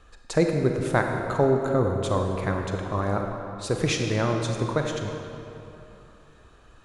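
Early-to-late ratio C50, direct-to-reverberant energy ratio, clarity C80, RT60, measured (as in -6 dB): 3.0 dB, 2.5 dB, 4.0 dB, 3.0 s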